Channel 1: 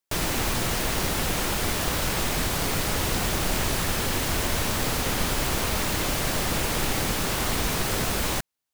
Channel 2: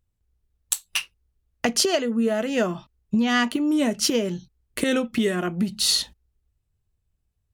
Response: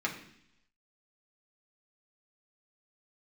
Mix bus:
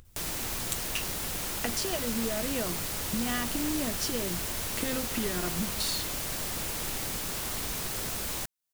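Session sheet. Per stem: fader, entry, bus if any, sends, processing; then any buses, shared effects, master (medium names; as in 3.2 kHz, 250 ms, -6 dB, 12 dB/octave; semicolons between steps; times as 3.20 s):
-11.5 dB, 0.05 s, no send, treble shelf 4.6 kHz +9 dB
-6.0 dB, 0.00 s, no send, compression, threshold -24 dBFS, peak gain reduction 7.5 dB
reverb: none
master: upward compressor, threshold -36 dBFS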